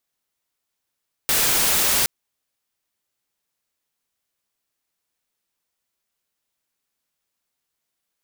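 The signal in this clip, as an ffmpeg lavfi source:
-f lavfi -i "anoisesrc=c=white:a=0.194:d=0.77:r=44100:seed=1"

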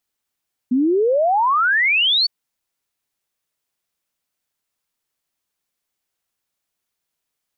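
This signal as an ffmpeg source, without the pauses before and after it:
-f lavfi -i "aevalsrc='0.211*clip(min(t,1.56-t)/0.01,0,1)*sin(2*PI*240*1.56/log(4600/240)*(exp(log(4600/240)*t/1.56)-1))':d=1.56:s=44100"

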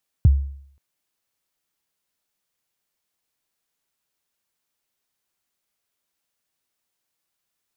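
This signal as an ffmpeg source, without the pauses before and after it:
-f lavfi -i "aevalsrc='0.447*pow(10,-3*t/0.62)*sin(2*PI*(140*0.023/log(69/140)*(exp(log(69/140)*min(t,0.023)/0.023)-1)+69*max(t-0.023,0)))':d=0.53:s=44100"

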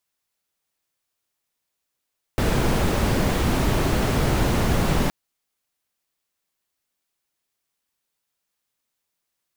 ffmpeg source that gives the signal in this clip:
-f lavfi -i "anoisesrc=c=brown:a=0.468:d=2.72:r=44100:seed=1"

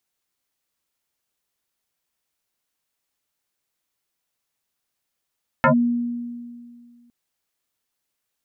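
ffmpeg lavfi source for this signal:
-f lavfi -i "aevalsrc='0.282*pow(10,-3*t/2.12)*sin(2*PI*239*t+4.7*clip(1-t/0.1,0,1)*sin(2*PI*1.62*239*t))':d=1.46:s=44100"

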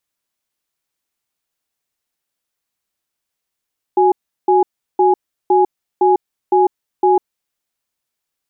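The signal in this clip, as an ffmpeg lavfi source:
-f lavfi -i "aevalsrc='0.266*(sin(2*PI*370*t)+sin(2*PI*832*t))*clip(min(mod(t,0.51),0.15-mod(t,0.51))/0.005,0,1)':d=3.48:s=44100"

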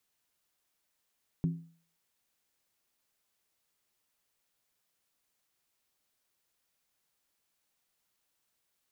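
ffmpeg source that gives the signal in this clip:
-f lavfi -i "aevalsrc='0.0668*pow(10,-3*t/0.45)*sin(2*PI*166*t)+0.0211*pow(10,-3*t/0.356)*sin(2*PI*264.6*t)+0.00668*pow(10,-3*t/0.308)*sin(2*PI*354.6*t)+0.00211*pow(10,-3*t/0.297)*sin(2*PI*381.1*t)+0.000668*pow(10,-3*t/0.276)*sin(2*PI*440.4*t)':d=0.63:s=44100"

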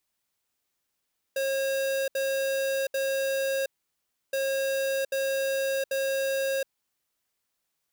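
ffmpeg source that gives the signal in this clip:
-f lavfi -i "aevalsrc='0.0422*(2*lt(mod(541*t,1),0.5)-1)*clip(min(mod(mod(t,2.97),0.79),0.72-mod(mod(t,2.97),0.79))/0.005,0,1)*lt(mod(t,2.97),2.37)':d=5.94:s=44100"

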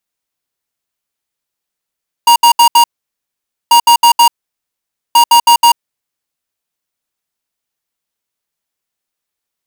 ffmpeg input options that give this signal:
-f lavfi -i "aevalsrc='0.531*(2*lt(mod(944*t,1),0.5)-1)*clip(min(mod(mod(t,1.44),0.16),0.09-mod(mod(t,1.44),0.16))/0.005,0,1)*lt(mod(t,1.44),0.64)':d=4.32:s=44100"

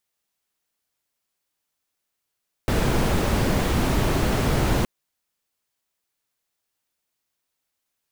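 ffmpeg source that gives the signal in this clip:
-f lavfi -i "anoisesrc=c=brown:a=0.442:d=2.17:r=44100:seed=1"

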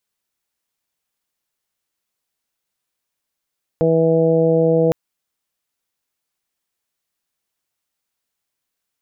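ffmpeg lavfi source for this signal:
-f lavfi -i "aevalsrc='0.119*sin(2*PI*163*t)+0.0891*sin(2*PI*326*t)+0.2*sin(2*PI*489*t)+0.075*sin(2*PI*652*t)+0.0178*sin(2*PI*815*t)':d=1.11:s=44100"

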